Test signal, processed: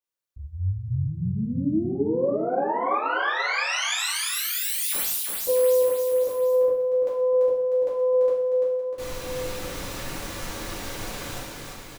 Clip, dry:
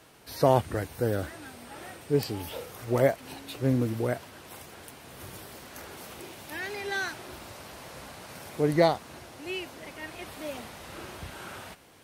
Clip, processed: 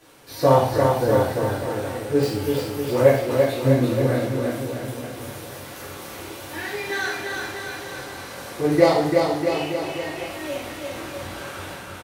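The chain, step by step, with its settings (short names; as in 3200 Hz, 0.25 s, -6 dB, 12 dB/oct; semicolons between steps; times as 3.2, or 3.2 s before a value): self-modulated delay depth 0.069 ms; bouncing-ball echo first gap 0.34 s, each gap 0.9×, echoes 5; two-slope reverb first 0.64 s, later 1.9 s, from -26 dB, DRR -8 dB; gain -3 dB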